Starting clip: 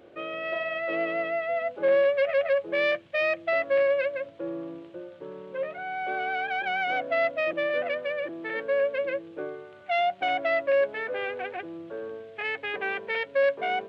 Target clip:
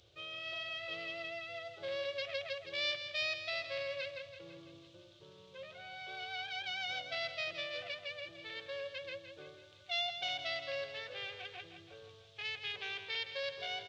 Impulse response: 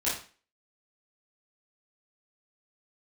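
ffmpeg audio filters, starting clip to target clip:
-af "firequalizer=gain_entry='entry(110,0);entry(230,-28);entry(400,-20);entry(600,-20);entry(1200,-16);entry(1700,-18);entry(3600,5);entry(5900,8);entry(8900,-4)':delay=0.05:min_phase=1,aecho=1:1:165|330|495|660|825|990:0.335|0.178|0.0941|0.0499|0.0264|0.014,volume=1dB"

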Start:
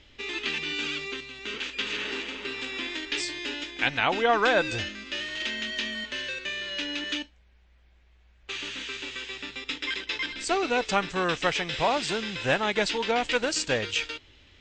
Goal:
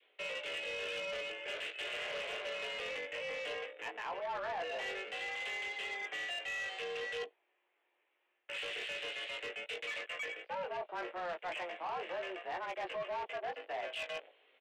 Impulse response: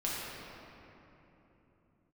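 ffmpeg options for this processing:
-filter_complex "[0:a]adynamicequalizer=threshold=0.01:dfrequency=580:dqfactor=1:tfrequency=580:tqfactor=1:attack=5:release=100:ratio=0.375:range=3.5:mode=boostabove:tftype=bell,areverse,acompressor=threshold=-39dB:ratio=10,areverse,highpass=frequency=180:width_type=q:width=0.5412,highpass=frequency=180:width_type=q:width=1.307,lowpass=frequency=2900:width_type=q:width=0.5176,lowpass=frequency=2900:width_type=q:width=0.7071,lowpass=frequency=2900:width_type=q:width=1.932,afreqshift=140,asplit=2[link_01][link_02];[link_02]alimiter=level_in=14dB:limit=-24dB:level=0:latency=1:release=71,volume=-14dB,volume=3dB[link_03];[link_01][link_03]amix=inputs=2:normalize=0,afwtdn=0.00708,afreqshift=36,asplit=2[link_04][link_05];[link_05]adelay=19,volume=-5dB[link_06];[link_04][link_06]amix=inputs=2:normalize=0,asoftclip=type=tanh:threshold=-33dB,volume=-1dB"

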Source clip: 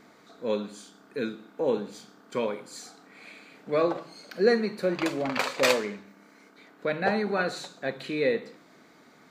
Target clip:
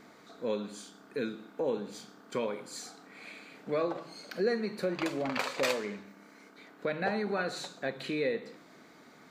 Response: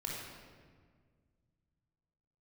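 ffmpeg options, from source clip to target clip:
-af "acompressor=threshold=-32dB:ratio=2"

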